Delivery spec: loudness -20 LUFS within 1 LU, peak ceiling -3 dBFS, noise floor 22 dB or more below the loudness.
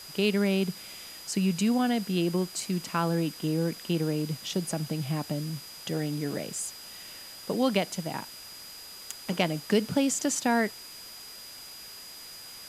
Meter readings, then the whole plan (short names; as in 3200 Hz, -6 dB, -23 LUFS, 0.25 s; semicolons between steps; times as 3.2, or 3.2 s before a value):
steady tone 4900 Hz; tone level -45 dBFS; noise floor -45 dBFS; noise floor target -51 dBFS; loudness -29.0 LUFS; peak -9.0 dBFS; loudness target -20.0 LUFS
-> notch 4900 Hz, Q 30; noise print and reduce 6 dB; gain +9 dB; limiter -3 dBFS